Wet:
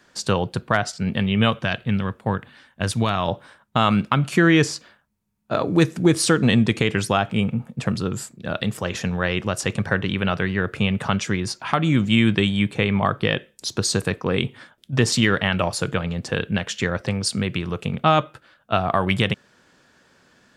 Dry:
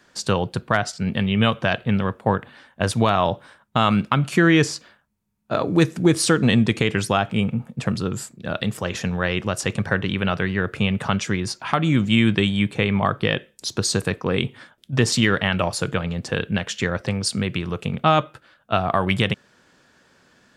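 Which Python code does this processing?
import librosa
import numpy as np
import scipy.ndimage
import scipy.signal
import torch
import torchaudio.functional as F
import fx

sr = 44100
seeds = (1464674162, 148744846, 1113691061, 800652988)

y = fx.peak_eq(x, sr, hz=630.0, db=-6.0, octaves=2.2, at=(1.59, 3.28))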